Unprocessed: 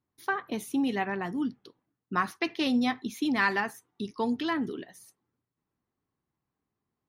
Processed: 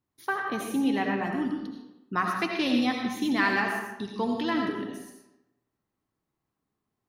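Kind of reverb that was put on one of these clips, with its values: digital reverb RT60 0.93 s, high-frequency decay 0.75×, pre-delay 45 ms, DRR 1 dB

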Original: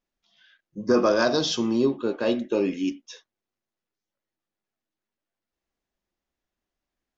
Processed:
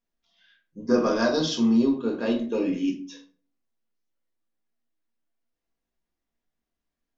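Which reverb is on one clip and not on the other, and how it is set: shoebox room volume 270 m³, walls furnished, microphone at 1.7 m; gain -5 dB

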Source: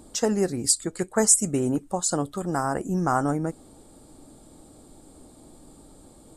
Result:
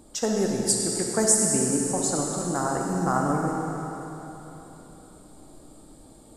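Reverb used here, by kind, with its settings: digital reverb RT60 3.6 s, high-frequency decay 1×, pre-delay 5 ms, DRR -0.5 dB; gain -3 dB

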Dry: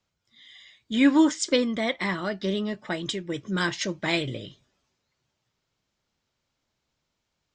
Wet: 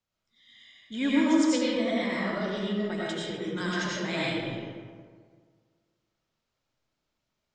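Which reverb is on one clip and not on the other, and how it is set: digital reverb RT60 1.8 s, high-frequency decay 0.5×, pre-delay 55 ms, DRR -7 dB; gain -10 dB

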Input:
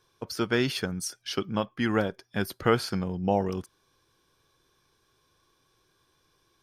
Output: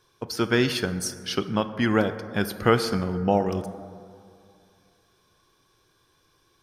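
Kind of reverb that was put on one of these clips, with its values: plate-style reverb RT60 2.4 s, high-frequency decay 0.35×, DRR 10.5 dB; gain +3.5 dB

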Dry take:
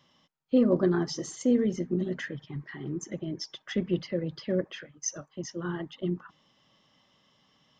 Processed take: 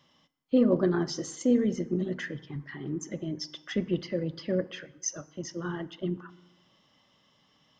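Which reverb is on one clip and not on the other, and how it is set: FDN reverb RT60 1 s, low-frequency decay 1.05×, high-frequency decay 0.7×, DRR 15.5 dB

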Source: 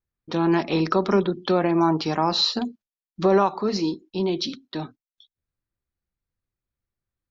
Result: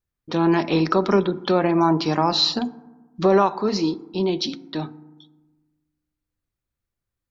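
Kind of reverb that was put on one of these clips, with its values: FDN reverb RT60 1.2 s, low-frequency decay 1.35×, high-frequency decay 0.35×, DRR 16 dB; gain +2 dB

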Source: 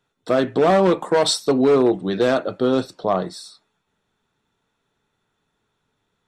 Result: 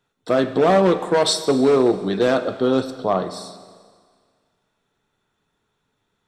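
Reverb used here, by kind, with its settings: Schroeder reverb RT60 1.8 s, combs from 30 ms, DRR 11 dB

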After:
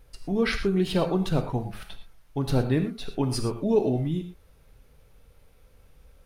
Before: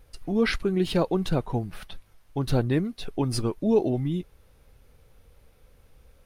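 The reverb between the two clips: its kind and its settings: non-linear reverb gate 0.14 s flat, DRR 6 dB; gain -1 dB

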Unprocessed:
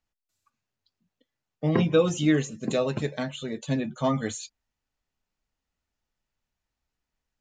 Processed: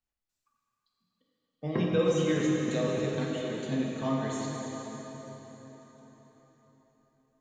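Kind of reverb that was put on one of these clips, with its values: plate-style reverb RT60 4.7 s, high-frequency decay 0.8×, DRR -3.5 dB; gain -8.5 dB

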